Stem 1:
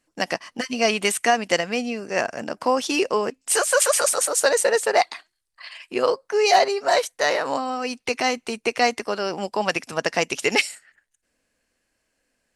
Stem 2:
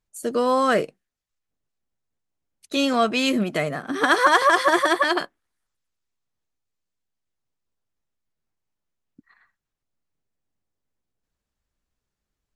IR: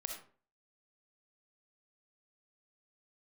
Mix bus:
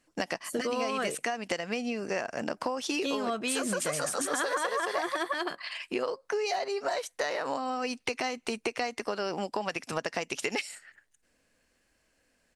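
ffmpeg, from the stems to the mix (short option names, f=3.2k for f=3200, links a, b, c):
-filter_complex "[0:a]highshelf=f=9.7k:g=-4.5,acompressor=threshold=-22dB:ratio=2,volume=2dB[a];[1:a]adelay=300,volume=-0.5dB[b];[a][b]amix=inputs=2:normalize=0,acompressor=threshold=-29dB:ratio=5"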